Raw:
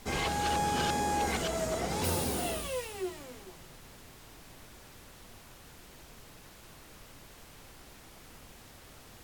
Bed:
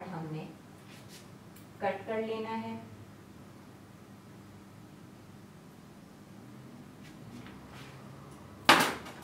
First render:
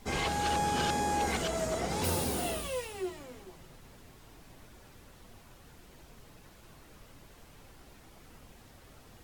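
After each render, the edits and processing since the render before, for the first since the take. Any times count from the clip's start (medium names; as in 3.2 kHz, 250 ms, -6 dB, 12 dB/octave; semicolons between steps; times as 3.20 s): noise reduction 6 dB, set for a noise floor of -54 dBFS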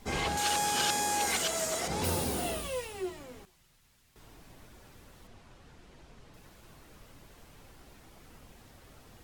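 0.37–1.88 s: tilt EQ +3 dB/octave; 3.45–4.16 s: amplifier tone stack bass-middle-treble 5-5-5; 5.27–6.34 s: distance through air 55 m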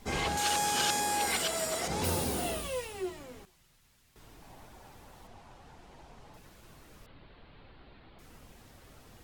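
1.00–1.83 s: band-stop 6.4 kHz, Q 6.1; 4.42–6.38 s: peaking EQ 820 Hz +9.5 dB 0.69 oct; 7.06–8.19 s: steep low-pass 4.4 kHz 72 dB/octave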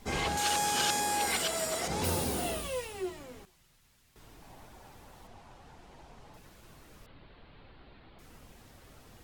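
no audible change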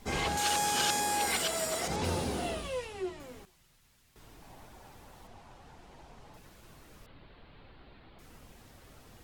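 1.96–3.20 s: distance through air 55 m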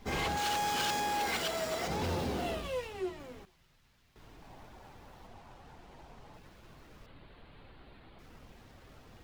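median filter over 5 samples; hard clipper -28.5 dBFS, distortion -15 dB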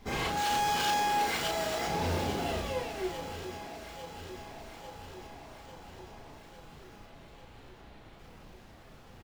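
doubling 35 ms -4.5 dB; echo whose repeats swap between lows and highs 424 ms, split 1 kHz, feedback 81%, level -9 dB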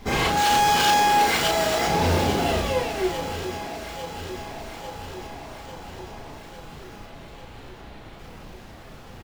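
trim +10 dB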